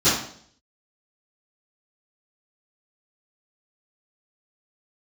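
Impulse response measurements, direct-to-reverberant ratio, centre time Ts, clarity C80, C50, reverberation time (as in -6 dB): -19.5 dB, 50 ms, 7.5 dB, 2.5 dB, 0.60 s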